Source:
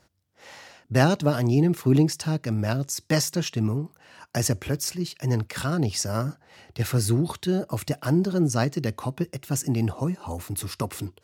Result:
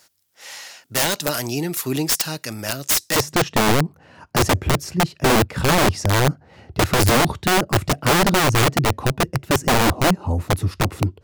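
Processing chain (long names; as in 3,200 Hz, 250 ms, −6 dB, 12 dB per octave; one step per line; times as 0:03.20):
spectral tilt +4 dB per octave, from 0:03.15 −3 dB per octave
wrap-around overflow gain 14.5 dB
level +3.5 dB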